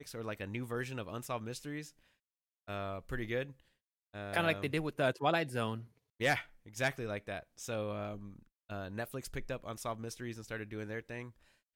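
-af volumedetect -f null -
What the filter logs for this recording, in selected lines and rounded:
mean_volume: -38.9 dB
max_volume: -16.6 dB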